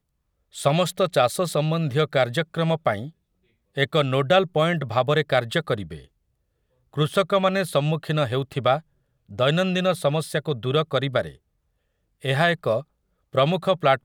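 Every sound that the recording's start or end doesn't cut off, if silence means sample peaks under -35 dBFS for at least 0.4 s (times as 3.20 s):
0.55–3.09 s
3.77–5.99 s
6.94–8.80 s
9.31–11.30 s
12.24–12.82 s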